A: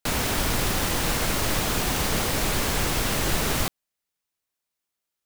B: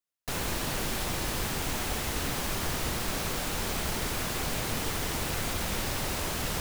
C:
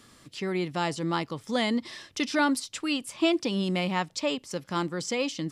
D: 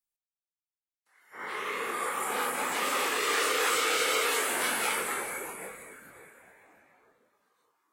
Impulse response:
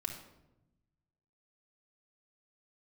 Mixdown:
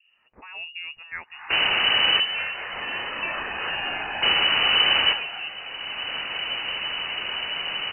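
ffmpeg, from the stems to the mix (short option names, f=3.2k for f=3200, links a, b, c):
-filter_complex "[0:a]adelay=1450,volume=2dB,asplit=3[a][b][c];[a]atrim=end=2.2,asetpts=PTS-STARTPTS,afade=t=out:st=2.196:d=0.004:c=hsin[d];[b]atrim=start=2.2:end=4.22,asetpts=PTS-STARTPTS,volume=0[e];[c]atrim=start=4.22,asetpts=PTS-STARTPTS,afade=t=in:d=0.004:c=hsin[f];[d][e][f]concat=n=3:v=0:a=1,asplit=2[g][h];[h]volume=-8dB[i];[1:a]adelay=1950,volume=2dB,asplit=2[j][k];[k]volume=-19.5dB[l];[2:a]acrossover=split=650[m][n];[m]aeval=exprs='val(0)*(1-1/2+1/2*cos(2*PI*1.3*n/s))':c=same[o];[n]aeval=exprs='val(0)*(1-1/2-1/2*cos(2*PI*1.3*n/s))':c=same[p];[o][p]amix=inputs=2:normalize=0,volume=-2.5dB,asplit=2[q][r];[3:a]highshelf=f=2.2k:g=7,volume=-4.5dB[s];[r]apad=whole_len=381836[t];[j][t]sidechaincompress=threshold=-42dB:ratio=8:attack=16:release=754[u];[4:a]atrim=start_sample=2205[v];[i][l]amix=inputs=2:normalize=0[w];[w][v]afir=irnorm=-1:irlink=0[x];[g][u][q][s][x]amix=inputs=5:normalize=0,lowpass=f=2.6k:t=q:w=0.5098,lowpass=f=2.6k:t=q:w=0.6013,lowpass=f=2.6k:t=q:w=0.9,lowpass=f=2.6k:t=q:w=2.563,afreqshift=-3000"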